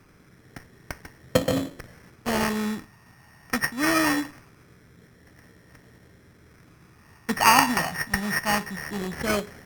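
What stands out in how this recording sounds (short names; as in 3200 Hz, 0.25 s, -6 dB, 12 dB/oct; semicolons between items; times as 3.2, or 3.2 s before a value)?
a buzz of ramps at a fixed pitch in blocks of 8 samples; phasing stages 8, 0.22 Hz, lowest notch 470–1000 Hz; aliases and images of a low sample rate 3700 Hz, jitter 0%; Opus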